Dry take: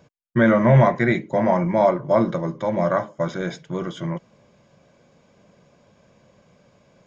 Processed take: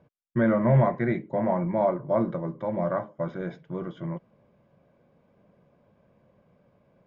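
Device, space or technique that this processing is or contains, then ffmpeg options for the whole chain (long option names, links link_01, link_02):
phone in a pocket: -af "lowpass=3600,highshelf=frequency=2100:gain=-12,volume=-5.5dB"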